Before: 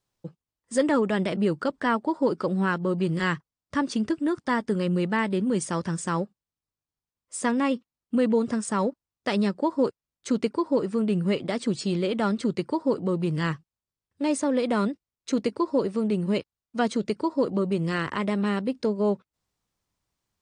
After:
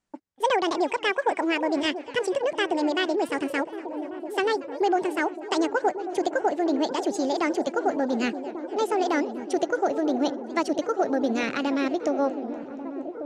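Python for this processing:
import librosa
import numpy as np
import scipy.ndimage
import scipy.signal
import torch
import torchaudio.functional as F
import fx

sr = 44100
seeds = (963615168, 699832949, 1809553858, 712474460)

p1 = fx.speed_glide(x, sr, from_pct=178, to_pct=130)
p2 = scipy.signal.sosfilt(scipy.signal.butter(4, 8600.0, 'lowpass', fs=sr, output='sos'), p1)
p3 = p2 + fx.echo_wet_lowpass(p2, sr, ms=1142, feedback_pct=71, hz=780.0, wet_db=-9.5, dry=0)
y = fx.echo_warbled(p3, sr, ms=238, feedback_pct=65, rate_hz=2.8, cents=215, wet_db=-21.0)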